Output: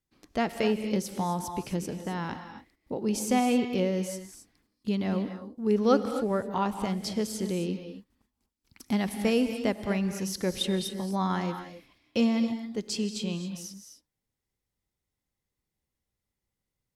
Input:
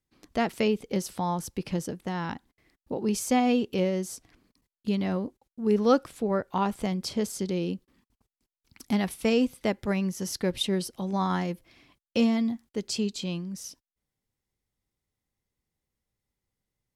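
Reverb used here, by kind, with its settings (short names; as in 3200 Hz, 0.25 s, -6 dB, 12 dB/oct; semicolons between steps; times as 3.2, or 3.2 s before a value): non-linear reverb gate 0.29 s rising, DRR 8 dB; gain -1.5 dB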